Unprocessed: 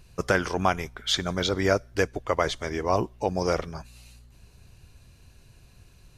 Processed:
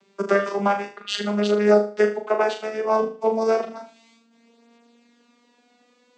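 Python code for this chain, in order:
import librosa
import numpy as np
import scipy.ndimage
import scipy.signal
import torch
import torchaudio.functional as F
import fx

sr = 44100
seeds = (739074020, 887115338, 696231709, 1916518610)

y = fx.vocoder_glide(x, sr, note=55, semitones=4)
y = scipy.signal.sosfilt(scipy.signal.butter(2, 340.0, 'highpass', fs=sr, output='sos'), y)
y = fx.room_flutter(y, sr, wall_m=6.6, rt60_s=0.38)
y = F.gain(torch.from_numpy(y), 7.5).numpy()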